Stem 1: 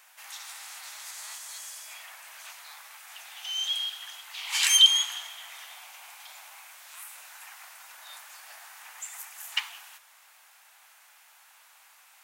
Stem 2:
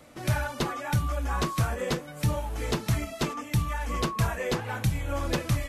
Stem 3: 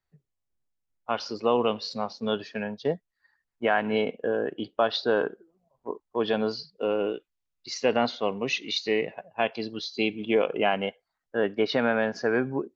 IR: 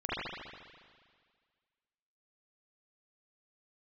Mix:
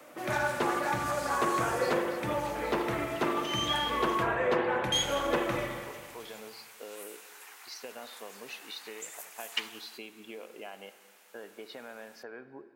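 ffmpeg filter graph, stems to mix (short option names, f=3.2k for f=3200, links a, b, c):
-filter_complex "[0:a]volume=-3.5dB,asplit=3[a][b][c];[a]atrim=end=4.23,asetpts=PTS-STARTPTS,afade=t=out:st=4.226:d=0.004:c=hsin[d];[b]atrim=start=4.23:end=4.92,asetpts=PTS-STARTPTS,volume=0[e];[c]atrim=start=4.92,asetpts=PTS-STARTPTS,afade=t=in:d=0.004:c=hsin[f];[d][e][f]concat=n=3:v=0:a=1[g];[1:a]acrossover=split=270 2600:gain=0.0794 1 0.112[h][i][j];[h][i][j]amix=inputs=3:normalize=0,volume=0dB,asplit=2[k][l];[l]volume=-8dB[m];[2:a]acompressor=threshold=-31dB:ratio=6,highpass=f=430:p=1,volume=-9dB,asplit=2[n][o];[o]volume=-20dB[p];[3:a]atrim=start_sample=2205[q];[m][p]amix=inputs=2:normalize=0[r];[r][q]afir=irnorm=-1:irlink=0[s];[g][k][n][s]amix=inputs=4:normalize=0"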